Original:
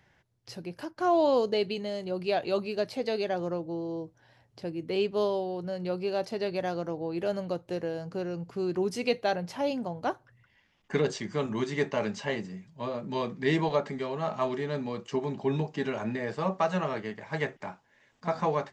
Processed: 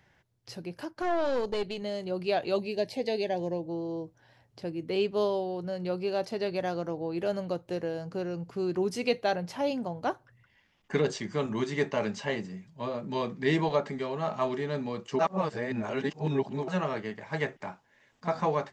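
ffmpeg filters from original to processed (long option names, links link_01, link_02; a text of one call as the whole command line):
ffmpeg -i in.wav -filter_complex "[0:a]asettb=1/sr,asplit=3[link_01][link_02][link_03];[link_01]atrim=end=1.024[link_04];[link_02]atrim=start=1.02:end=1.82,asetpts=PTS-STARTPTS,afade=type=in:duration=0.004:curve=qsin,afade=type=out:start_time=0.796:duration=0.004:curve=qsin,aeval=exprs='(tanh(14.1*val(0)+0.6)-tanh(0.6))/14.1':channel_layout=same[link_05];[link_03]atrim=start=1.816[link_06];[link_04][link_05]acrossfade=duration=0.004:curve1=hsin:curve2=qsin[link_07];[link_07][link_06]acrossfade=duration=0.004:curve1=qsin:curve2=hsin,asettb=1/sr,asplit=3[link_08][link_09][link_10];[link_08]atrim=end=2.564[link_11];[link_09]atrim=start=2.56:end=3.65,asetpts=PTS-STARTPTS,afade=type=in:duration=0.004:curve=qsin,afade=type=out:start_time=1.086:duration=0.004:curve=qsin,asuperstop=centerf=1300:order=4:qfactor=1.9[link_12];[link_10]atrim=start=3.646[link_13];[link_11][link_12]acrossfade=duration=0.004:curve1=hsin:curve2=qsin[link_14];[link_14][link_13]acrossfade=duration=0.004:curve1=qsin:curve2=hsin,asplit=3[link_15][link_16][link_17];[link_15]atrim=end=15.192[link_18];[link_16]atrim=start=15.188:end=16.682,asetpts=PTS-STARTPTS,areverse[link_19];[link_17]atrim=start=16.678[link_20];[link_18][link_19]acrossfade=duration=0.004:curve1=hsin:curve2=hsin[link_21];[link_21][link_20]acrossfade=duration=0.004:curve1=hsin:curve2=hsin" out.wav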